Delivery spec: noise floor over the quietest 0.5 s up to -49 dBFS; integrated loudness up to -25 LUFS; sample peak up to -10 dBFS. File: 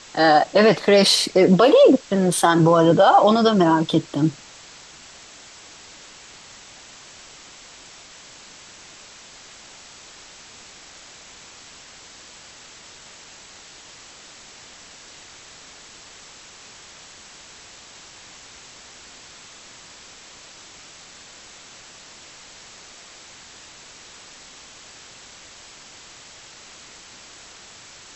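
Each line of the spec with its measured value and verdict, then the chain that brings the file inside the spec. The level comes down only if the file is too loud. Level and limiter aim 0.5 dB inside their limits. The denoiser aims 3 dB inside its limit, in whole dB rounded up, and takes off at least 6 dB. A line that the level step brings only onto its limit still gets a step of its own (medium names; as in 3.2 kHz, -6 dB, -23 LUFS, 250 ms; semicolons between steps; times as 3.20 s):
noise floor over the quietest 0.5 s -44 dBFS: fail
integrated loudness -16.0 LUFS: fail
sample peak -5.0 dBFS: fail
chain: trim -9.5 dB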